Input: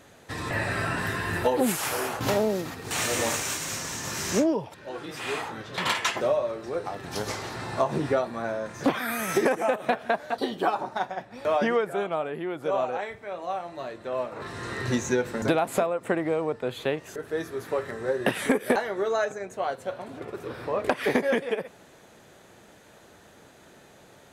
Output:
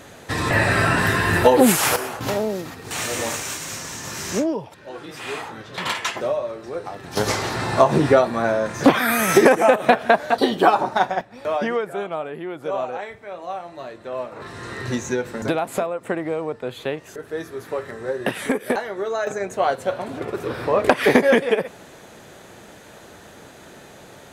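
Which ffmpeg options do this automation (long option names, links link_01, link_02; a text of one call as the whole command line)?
ffmpeg -i in.wav -af "asetnsamples=nb_out_samples=441:pad=0,asendcmd='1.96 volume volume 1dB;7.17 volume volume 10dB;11.21 volume volume 1dB;19.27 volume volume 9dB',volume=10dB" out.wav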